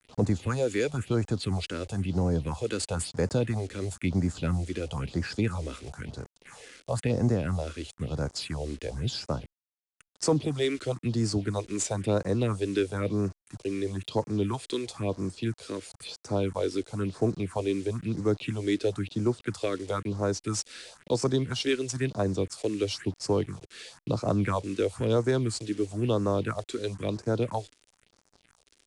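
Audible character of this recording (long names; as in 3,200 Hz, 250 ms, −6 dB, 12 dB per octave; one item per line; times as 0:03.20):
a quantiser's noise floor 8 bits, dither none
phaser sweep stages 4, 1 Hz, lowest notch 130–3,100 Hz
IMA ADPCM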